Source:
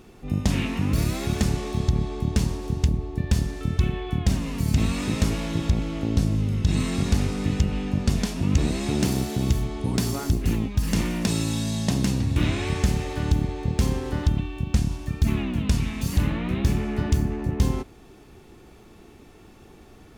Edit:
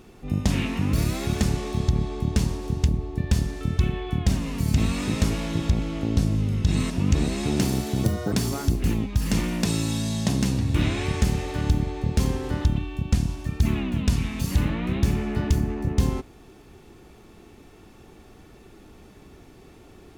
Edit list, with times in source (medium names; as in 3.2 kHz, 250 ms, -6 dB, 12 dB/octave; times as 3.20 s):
6.90–8.33 s: delete
9.47–9.94 s: speed 166%